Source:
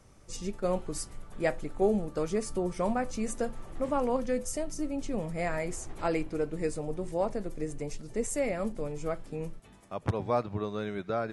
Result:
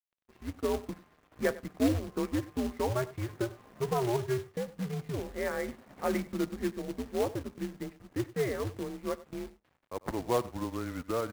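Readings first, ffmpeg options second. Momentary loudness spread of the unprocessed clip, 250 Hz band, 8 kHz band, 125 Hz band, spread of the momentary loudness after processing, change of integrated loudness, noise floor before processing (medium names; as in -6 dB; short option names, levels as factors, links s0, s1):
8 LU, -0.5 dB, -7.0 dB, +1.0 dB, 10 LU, -1.5 dB, -54 dBFS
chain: -filter_complex "[0:a]equalizer=f=100:t=o:w=1.7:g=-5,highpass=f=190:t=q:w=0.5412,highpass=f=190:t=q:w=1.307,lowpass=f=2300:t=q:w=0.5176,lowpass=f=2300:t=q:w=0.7071,lowpass=f=2300:t=q:w=1.932,afreqshift=-120,aeval=exprs='sgn(val(0))*max(abs(val(0))-0.00158,0)':c=same,asplit=2[s0][s1];[s1]aecho=0:1:96:0.119[s2];[s0][s2]amix=inputs=2:normalize=0,acrusher=bits=3:mode=log:mix=0:aa=0.000001"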